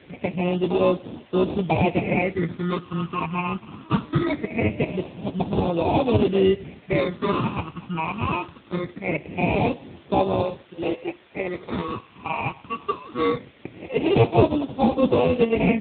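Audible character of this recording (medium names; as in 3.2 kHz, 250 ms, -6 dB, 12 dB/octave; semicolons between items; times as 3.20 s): aliases and images of a low sample rate 1.6 kHz, jitter 0%; phasing stages 8, 0.22 Hz, lowest notch 550–1900 Hz; a quantiser's noise floor 8-bit, dither triangular; AMR-NB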